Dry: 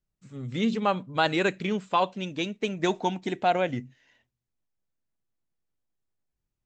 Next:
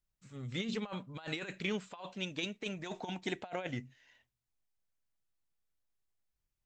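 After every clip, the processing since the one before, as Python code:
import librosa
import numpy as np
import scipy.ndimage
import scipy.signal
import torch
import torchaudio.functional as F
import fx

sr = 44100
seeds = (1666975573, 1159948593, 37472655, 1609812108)

y = fx.peak_eq(x, sr, hz=240.0, db=-7.5, octaves=2.7)
y = fx.over_compress(y, sr, threshold_db=-32.0, ratio=-0.5)
y = y * 10.0 ** (-5.0 / 20.0)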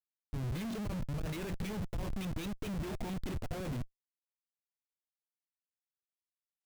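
y = fx.schmitt(x, sr, flips_db=-45.0)
y = fx.low_shelf(y, sr, hz=260.0, db=10.5)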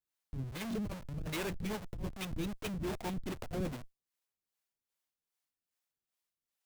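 y = fx.over_compress(x, sr, threshold_db=-39.0, ratio=-0.5)
y = fx.harmonic_tremolo(y, sr, hz=2.5, depth_pct=70, crossover_hz=420.0)
y = y * 10.0 ** (5.0 / 20.0)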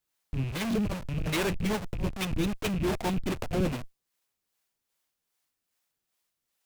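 y = fx.rattle_buzz(x, sr, strikes_db=-43.0, level_db=-44.0)
y = fx.doppler_dist(y, sr, depth_ms=0.12)
y = y * 10.0 ** (9.0 / 20.0)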